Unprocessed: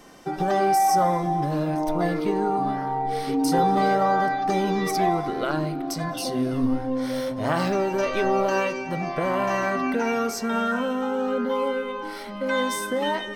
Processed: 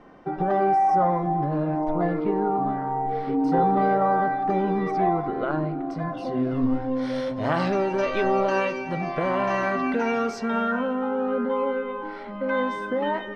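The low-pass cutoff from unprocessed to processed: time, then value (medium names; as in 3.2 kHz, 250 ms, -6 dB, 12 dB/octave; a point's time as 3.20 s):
6.18 s 1.6 kHz
7.05 s 4.1 kHz
10.25 s 4.1 kHz
10.95 s 1.9 kHz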